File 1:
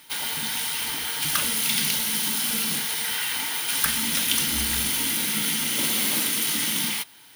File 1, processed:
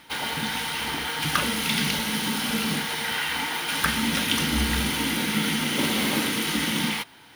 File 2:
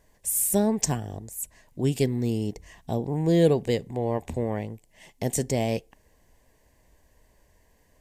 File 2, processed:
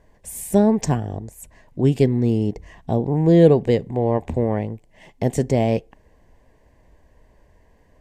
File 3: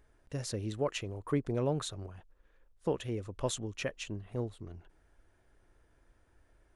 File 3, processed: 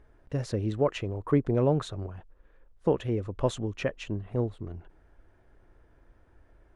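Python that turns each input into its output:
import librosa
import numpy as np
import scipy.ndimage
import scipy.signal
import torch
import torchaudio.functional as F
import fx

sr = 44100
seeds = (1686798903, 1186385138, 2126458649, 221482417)

y = fx.lowpass(x, sr, hz=1500.0, slope=6)
y = y * 10.0 ** (7.5 / 20.0)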